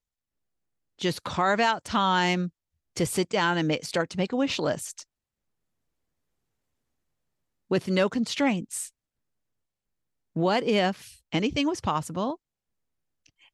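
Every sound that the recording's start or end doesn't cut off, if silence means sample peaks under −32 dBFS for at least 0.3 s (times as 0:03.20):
0:01.01–0:02.48
0:02.97–0:05.01
0:07.71–0:08.85
0:10.36–0:10.92
0:11.32–0:12.34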